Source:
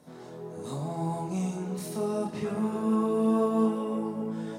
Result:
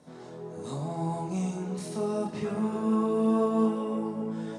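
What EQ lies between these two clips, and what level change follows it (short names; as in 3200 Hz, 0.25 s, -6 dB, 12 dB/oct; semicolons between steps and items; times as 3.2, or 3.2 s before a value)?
LPF 9600 Hz 24 dB/oct; 0.0 dB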